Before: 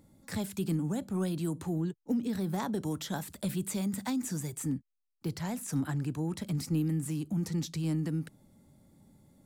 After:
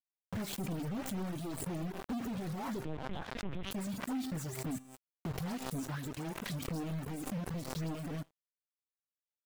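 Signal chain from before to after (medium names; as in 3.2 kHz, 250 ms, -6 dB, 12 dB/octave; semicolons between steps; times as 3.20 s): in parallel at -11 dB: saturation -37 dBFS, distortion -7 dB; 1.17–1.82 s: on the sum: high-pass 47 Hz 24 dB/octave; 5.79–6.62 s: tilt shelf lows -4.5 dB, about 630 Hz; phase dispersion highs, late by 144 ms, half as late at 1.6 kHz; companded quantiser 2-bit; on a send: thinning echo 82 ms, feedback 30%, high-pass 260 Hz, level -12.5 dB; on the sum: reverb removal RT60 1 s; treble shelf 2.2 kHz -8 dB; feedback comb 130 Hz, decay 0.81 s, harmonics all, mix 50%; 2.85–3.71 s: LPC vocoder at 8 kHz pitch kept; crossover distortion -54.5 dBFS; swell ahead of each attack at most 48 dB/s; trim -3.5 dB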